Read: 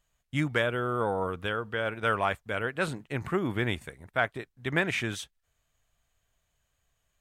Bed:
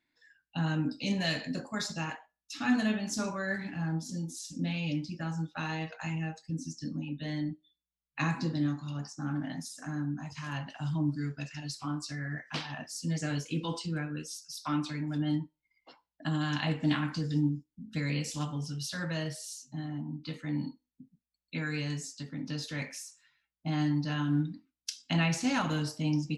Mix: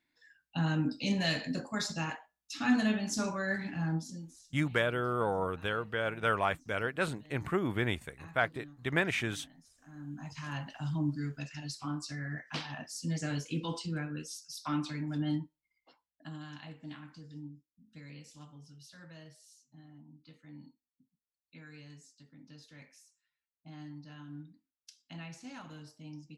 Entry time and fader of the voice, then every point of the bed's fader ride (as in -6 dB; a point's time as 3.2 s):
4.20 s, -2.5 dB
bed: 3.96 s 0 dB
4.54 s -21 dB
9.78 s -21 dB
10.27 s -2 dB
15.3 s -2 dB
16.73 s -17.5 dB